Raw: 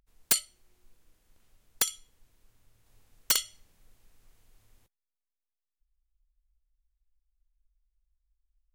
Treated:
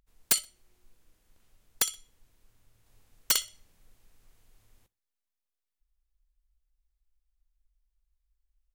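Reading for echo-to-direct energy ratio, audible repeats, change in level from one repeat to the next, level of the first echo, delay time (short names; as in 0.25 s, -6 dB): -23.5 dB, 2, -9.5 dB, -24.0 dB, 62 ms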